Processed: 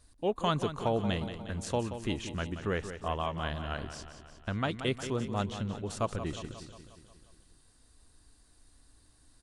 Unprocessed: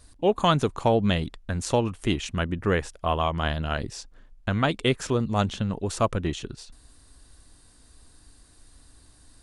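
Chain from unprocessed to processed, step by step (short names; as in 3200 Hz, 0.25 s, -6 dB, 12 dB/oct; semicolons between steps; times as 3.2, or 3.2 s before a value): feedback echo 0.179 s, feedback 59%, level -10.5 dB; gain -8.5 dB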